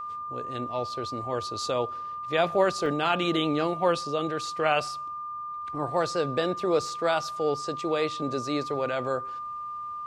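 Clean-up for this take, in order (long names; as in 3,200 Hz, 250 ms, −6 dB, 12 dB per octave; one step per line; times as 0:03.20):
notch filter 1,200 Hz, Q 30
repair the gap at 0:02.86, 1.3 ms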